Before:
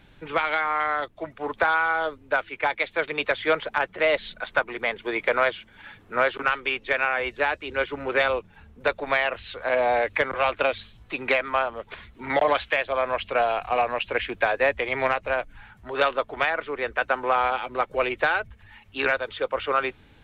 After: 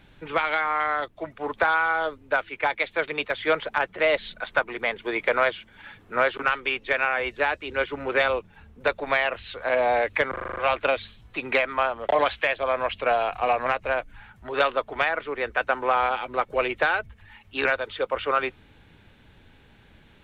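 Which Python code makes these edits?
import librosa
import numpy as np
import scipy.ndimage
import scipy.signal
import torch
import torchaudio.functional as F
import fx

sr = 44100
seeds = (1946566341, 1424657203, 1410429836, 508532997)

y = fx.edit(x, sr, fx.fade_down_up(start_s=2.9, length_s=0.78, db=-12.5, fade_s=0.38, curve='log'),
    fx.stutter(start_s=10.32, slice_s=0.04, count=7),
    fx.cut(start_s=11.85, length_s=0.53),
    fx.cut(start_s=13.95, length_s=1.12), tone=tone)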